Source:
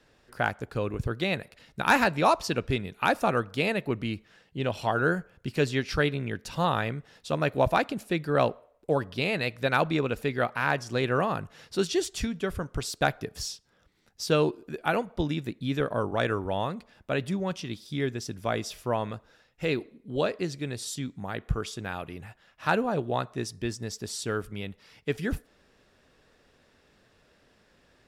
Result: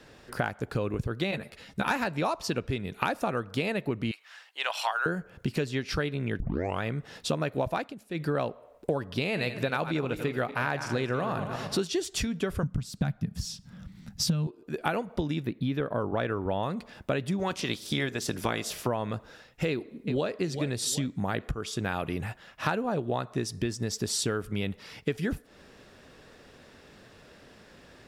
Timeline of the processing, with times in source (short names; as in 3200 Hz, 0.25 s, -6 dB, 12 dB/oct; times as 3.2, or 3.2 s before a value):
1.31–1.91 ensemble effect
4.11–5.06 HPF 840 Hz 24 dB/oct
6.4 tape start 0.42 s
7.72–8.38 dip -18.5 dB, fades 0.24 s
9.24–11.88 regenerating reverse delay 0.116 s, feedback 50%, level -11 dB
12.63–14.47 resonant low shelf 270 Hz +12 dB, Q 3
15.42–16.63 bell 7500 Hz -14.5 dB 1 oct
17.38–18.86 spectral limiter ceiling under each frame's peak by 14 dB
19.69–20.37 echo throw 0.38 s, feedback 35%, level -16 dB
whole clip: low shelf 360 Hz +3.5 dB; compressor 12:1, threshold -34 dBFS; low shelf 65 Hz -8 dB; gain +9 dB